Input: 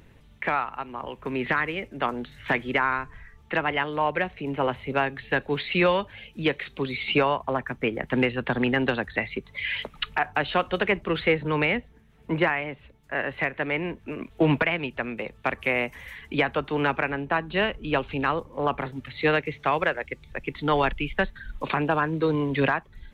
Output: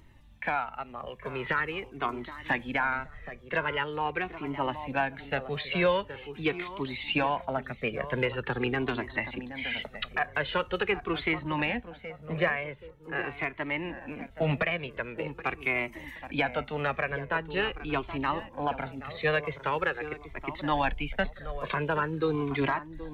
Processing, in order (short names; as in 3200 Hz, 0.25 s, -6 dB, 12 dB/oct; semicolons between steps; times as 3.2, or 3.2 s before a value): tape echo 0.774 s, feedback 35%, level -10 dB, low-pass 1300 Hz; cascading flanger falling 0.44 Hz